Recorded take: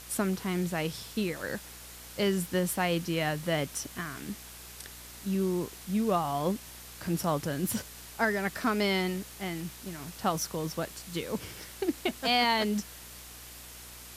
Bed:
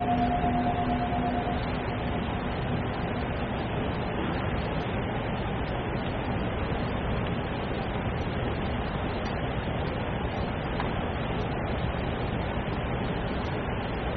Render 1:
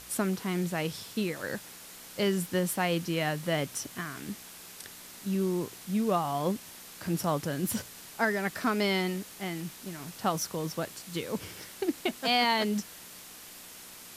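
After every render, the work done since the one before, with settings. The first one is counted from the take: de-hum 60 Hz, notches 2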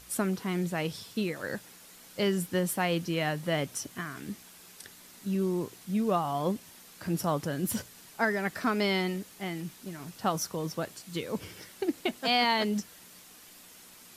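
noise reduction 6 dB, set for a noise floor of -48 dBFS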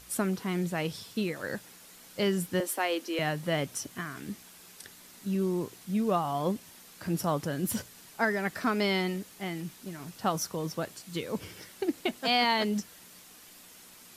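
2.60–3.19 s: steep high-pass 270 Hz 48 dB/octave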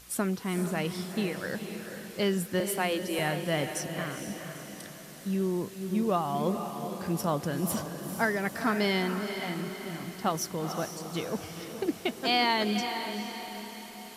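echo that smears into a reverb 458 ms, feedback 51%, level -7.5 dB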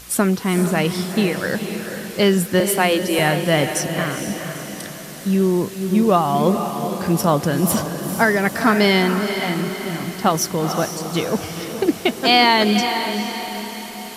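trim +12 dB; peak limiter -3 dBFS, peak gain reduction 2 dB

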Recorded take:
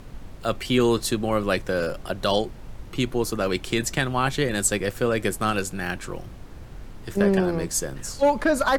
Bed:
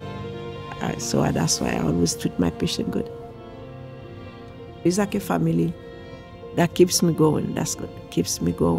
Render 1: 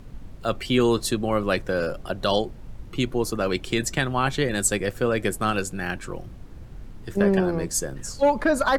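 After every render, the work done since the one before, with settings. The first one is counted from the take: noise reduction 6 dB, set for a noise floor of -41 dBFS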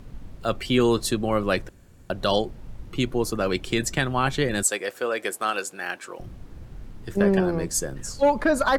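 1.69–2.10 s: room tone; 4.63–6.20 s: high-pass 480 Hz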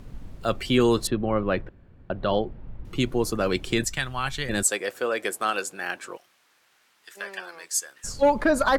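1.07–2.85 s: distance through air 410 m; 3.84–4.49 s: peaking EQ 330 Hz -14 dB 2.7 oct; 6.17–8.04 s: high-pass 1.5 kHz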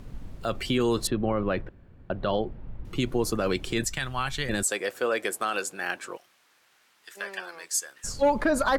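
peak limiter -15.5 dBFS, peak gain reduction 6.5 dB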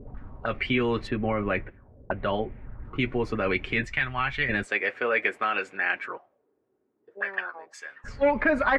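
comb of notches 170 Hz; touch-sensitive low-pass 340–2200 Hz up, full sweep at -32 dBFS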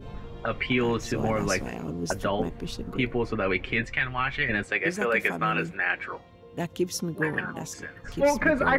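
add bed -11.5 dB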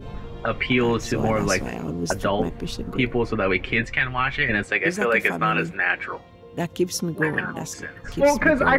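trim +4.5 dB

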